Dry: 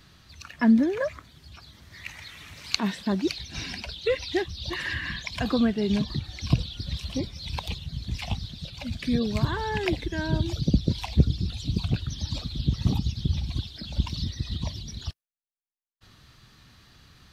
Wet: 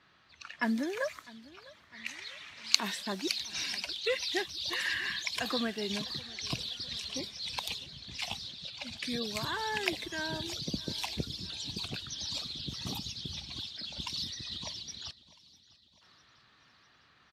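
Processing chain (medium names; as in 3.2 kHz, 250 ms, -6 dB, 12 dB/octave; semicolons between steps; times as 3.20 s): high-pass 790 Hz 6 dB/octave; level-controlled noise filter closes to 1.7 kHz, open at -33.5 dBFS; treble shelf 5 kHz +9.5 dB; on a send: feedback delay 652 ms, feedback 55%, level -21 dB; on the sum: trim -2 dB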